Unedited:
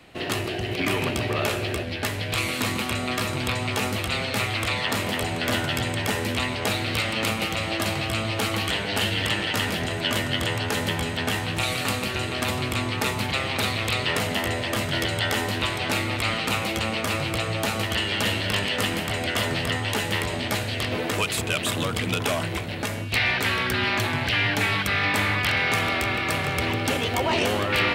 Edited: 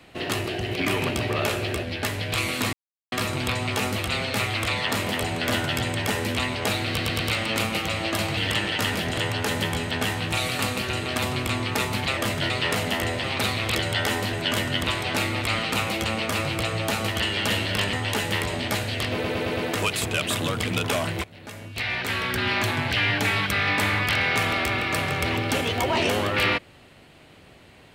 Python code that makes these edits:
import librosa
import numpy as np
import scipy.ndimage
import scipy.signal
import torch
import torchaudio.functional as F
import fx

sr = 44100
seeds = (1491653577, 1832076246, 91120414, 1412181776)

y = fx.edit(x, sr, fx.silence(start_s=2.73, length_s=0.39),
    fx.stutter(start_s=6.87, slice_s=0.11, count=4),
    fx.cut(start_s=8.04, length_s=1.08),
    fx.move(start_s=9.92, length_s=0.51, to_s=15.59),
    fx.swap(start_s=13.43, length_s=0.51, other_s=14.68, other_length_s=0.33),
    fx.cut(start_s=18.68, length_s=1.05),
    fx.stutter(start_s=20.93, slice_s=0.11, count=5),
    fx.fade_in_from(start_s=22.6, length_s=1.33, floor_db=-19.0), tone=tone)